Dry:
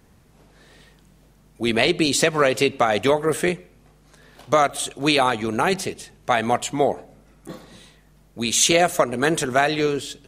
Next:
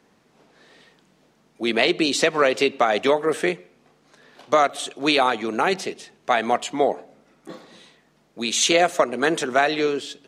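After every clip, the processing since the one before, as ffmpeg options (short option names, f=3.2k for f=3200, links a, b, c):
-filter_complex "[0:a]acrossover=split=190 7000:gain=0.0708 1 0.224[a][b][c];[a][b][c]amix=inputs=3:normalize=0"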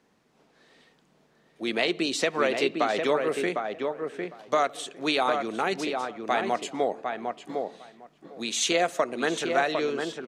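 -filter_complex "[0:a]asplit=2[a][b];[b]adelay=754,lowpass=f=1.8k:p=1,volume=-4dB,asplit=2[c][d];[d]adelay=754,lowpass=f=1.8k:p=1,volume=0.15,asplit=2[e][f];[f]adelay=754,lowpass=f=1.8k:p=1,volume=0.15[g];[a][c][e][g]amix=inputs=4:normalize=0,volume=-6.5dB"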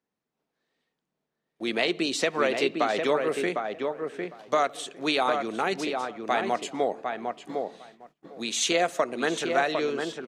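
-af "agate=range=-20dB:threshold=-51dB:ratio=16:detection=peak"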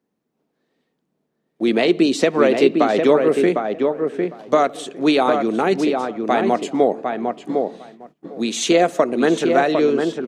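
-af "equalizer=f=260:w=0.47:g=11.5,volume=2.5dB"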